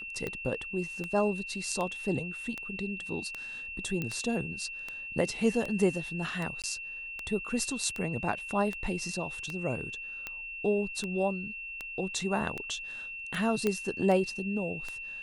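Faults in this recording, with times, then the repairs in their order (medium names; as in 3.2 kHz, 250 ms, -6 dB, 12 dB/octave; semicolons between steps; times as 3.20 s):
tick 78 rpm -21 dBFS
whine 2.7 kHz -38 dBFS
4.02 s: pop -20 dBFS
6.62–6.64 s: dropout 17 ms
13.67 s: pop -15 dBFS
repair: de-click; band-stop 2.7 kHz, Q 30; interpolate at 6.62 s, 17 ms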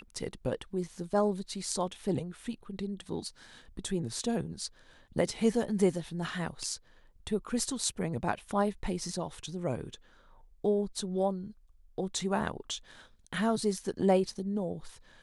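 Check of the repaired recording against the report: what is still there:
nothing left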